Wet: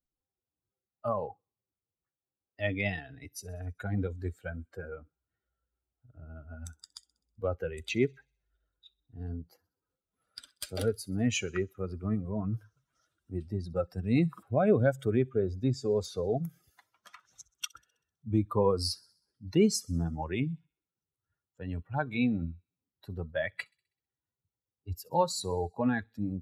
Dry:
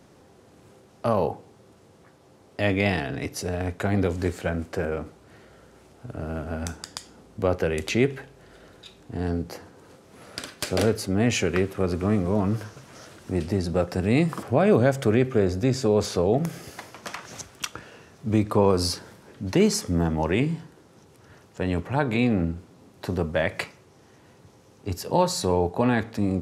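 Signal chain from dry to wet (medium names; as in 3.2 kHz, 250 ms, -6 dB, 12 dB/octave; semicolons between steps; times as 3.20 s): expander on every frequency bin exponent 2; feedback echo behind a high-pass 64 ms, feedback 53%, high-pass 4.3 kHz, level -22 dB; trim -2 dB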